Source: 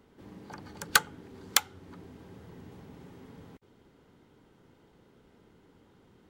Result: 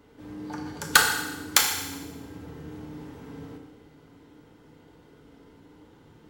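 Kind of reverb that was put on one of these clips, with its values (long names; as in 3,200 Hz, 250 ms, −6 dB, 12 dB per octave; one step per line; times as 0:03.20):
feedback delay network reverb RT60 1.1 s, low-frequency decay 0.9×, high-frequency decay 0.95×, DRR −1 dB
level +3 dB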